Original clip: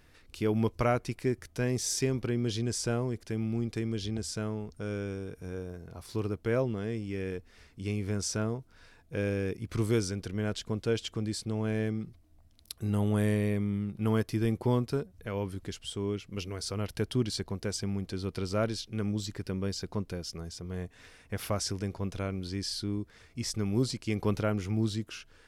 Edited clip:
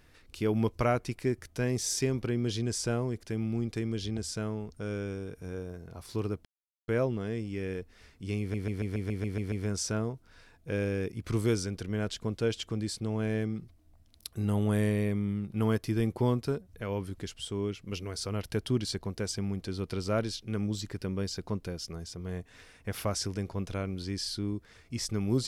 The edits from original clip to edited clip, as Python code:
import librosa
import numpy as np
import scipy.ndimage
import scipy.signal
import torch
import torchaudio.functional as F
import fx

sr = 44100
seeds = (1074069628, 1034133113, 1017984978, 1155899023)

y = fx.edit(x, sr, fx.insert_silence(at_s=6.45, length_s=0.43),
    fx.stutter(start_s=7.97, slice_s=0.14, count=9), tone=tone)